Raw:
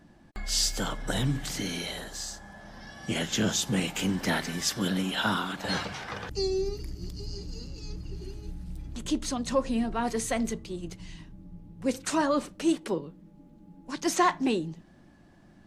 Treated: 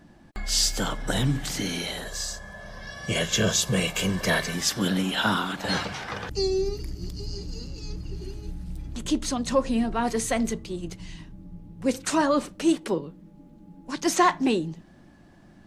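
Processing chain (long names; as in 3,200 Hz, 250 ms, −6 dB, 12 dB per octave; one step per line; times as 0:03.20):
0:02.05–0:04.54: comb filter 1.8 ms, depth 69%
level +3.5 dB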